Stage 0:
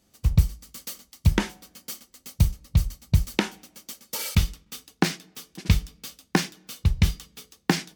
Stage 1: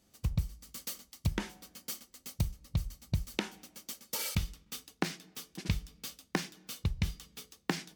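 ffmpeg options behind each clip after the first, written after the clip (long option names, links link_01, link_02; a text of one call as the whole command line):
ffmpeg -i in.wav -af "acompressor=threshold=-28dB:ratio=2.5,volume=-3.5dB" out.wav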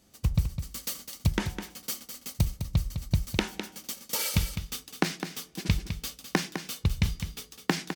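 ffmpeg -i in.wav -af "aecho=1:1:206:0.355,volume=6dB" out.wav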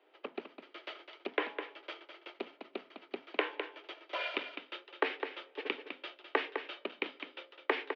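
ffmpeg -i in.wav -af "aeval=exprs='clip(val(0),-1,0.0631)':channel_layout=same,highpass=frequency=280:width_type=q:width=0.5412,highpass=frequency=280:width_type=q:width=1.307,lowpass=frequency=3000:width_type=q:width=0.5176,lowpass=frequency=3000:width_type=q:width=0.7071,lowpass=frequency=3000:width_type=q:width=1.932,afreqshift=99,volume=1dB" out.wav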